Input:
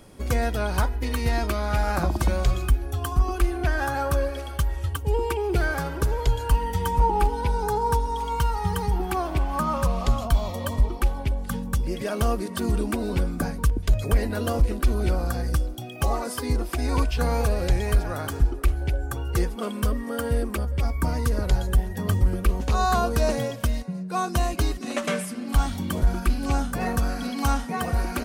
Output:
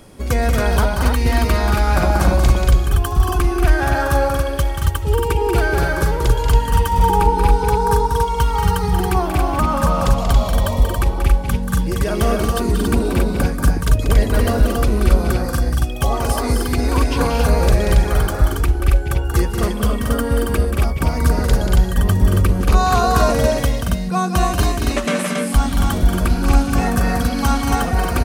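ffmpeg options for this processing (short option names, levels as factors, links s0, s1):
-af "aecho=1:1:183.7|227.4|277:0.447|0.501|0.631,volume=1.88"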